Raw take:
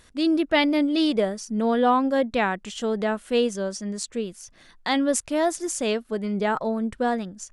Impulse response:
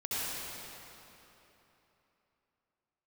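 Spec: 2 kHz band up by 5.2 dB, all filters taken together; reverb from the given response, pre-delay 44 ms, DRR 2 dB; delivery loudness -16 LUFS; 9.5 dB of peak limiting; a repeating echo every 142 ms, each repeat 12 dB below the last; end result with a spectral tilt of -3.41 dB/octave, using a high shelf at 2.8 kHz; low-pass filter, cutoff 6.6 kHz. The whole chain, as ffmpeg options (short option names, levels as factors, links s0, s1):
-filter_complex "[0:a]lowpass=6600,equalizer=f=2000:t=o:g=3.5,highshelf=f=2800:g=7,alimiter=limit=0.211:level=0:latency=1,aecho=1:1:142|284|426:0.251|0.0628|0.0157,asplit=2[s0][s1];[1:a]atrim=start_sample=2205,adelay=44[s2];[s1][s2]afir=irnorm=-1:irlink=0,volume=0.355[s3];[s0][s3]amix=inputs=2:normalize=0,volume=2.11"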